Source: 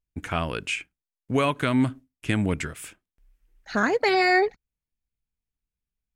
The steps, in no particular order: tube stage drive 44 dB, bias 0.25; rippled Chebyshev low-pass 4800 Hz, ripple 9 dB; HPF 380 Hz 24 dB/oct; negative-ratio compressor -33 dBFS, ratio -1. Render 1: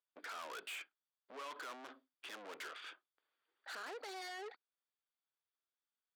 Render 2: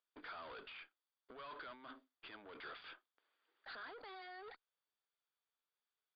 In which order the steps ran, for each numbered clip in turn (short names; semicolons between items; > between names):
rippled Chebyshev low-pass > negative-ratio compressor > tube stage > HPF; negative-ratio compressor > HPF > tube stage > rippled Chebyshev low-pass